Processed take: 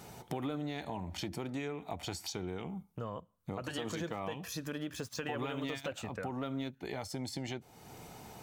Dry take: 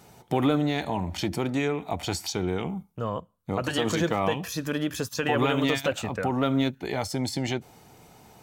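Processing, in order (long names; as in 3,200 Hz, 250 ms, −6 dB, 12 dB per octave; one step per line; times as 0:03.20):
0:04.82–0:05.95: running median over 3 samples
downward compressor 2.5 to 1, threshold −45 dBFS, peak gain reduction 17 dB
level +2 dB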